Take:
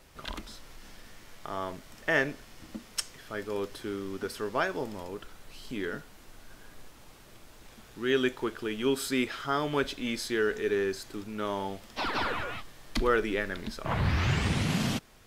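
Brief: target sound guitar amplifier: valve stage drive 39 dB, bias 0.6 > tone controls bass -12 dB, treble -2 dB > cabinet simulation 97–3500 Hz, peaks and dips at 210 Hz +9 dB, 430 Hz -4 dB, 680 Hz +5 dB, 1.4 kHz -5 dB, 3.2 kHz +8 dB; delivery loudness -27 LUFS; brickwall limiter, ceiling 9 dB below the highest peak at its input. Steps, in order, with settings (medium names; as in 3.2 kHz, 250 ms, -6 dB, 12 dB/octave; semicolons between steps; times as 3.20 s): peak limiter -22 dBFS; valve stage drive 39 dB, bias 0.6; tone controls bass -12 dB, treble -2 dB; cabinet simulation 97–3500 Hz, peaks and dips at 210 Hz +9 dB, 430 Hz -4 dB, 680 Hz +5 dB, 1.4 kHz -5 dB, 3.2 kHz +8 dB; trim +18 dB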